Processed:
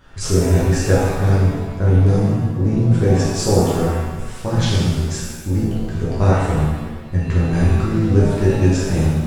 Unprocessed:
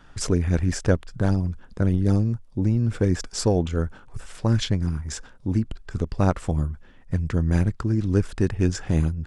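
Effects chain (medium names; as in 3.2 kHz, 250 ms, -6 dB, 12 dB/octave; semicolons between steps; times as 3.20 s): added noise brown -55 dBFS; pitch-shifted reverb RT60 1.2 s, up +7 st, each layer -8 dB, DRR -8 dB; trim -2.5 dB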